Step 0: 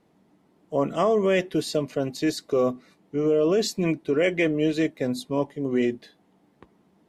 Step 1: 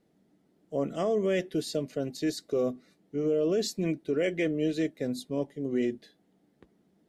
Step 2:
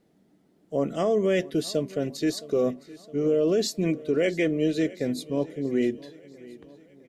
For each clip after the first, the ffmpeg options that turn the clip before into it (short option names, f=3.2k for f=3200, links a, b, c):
-af "equalizer=f=100:t=o:w=0.67:g=-3,equalizer=f=1k:t=o:w=0.67:g=-11,equalizer=f=2.5k:t=o:w=0.67:g=-4,volume=-4.5dB"
-af "aecho=1:1:664|1328|1992|2656:0.1|0.055|0.0303|0.0166,volume=4dB"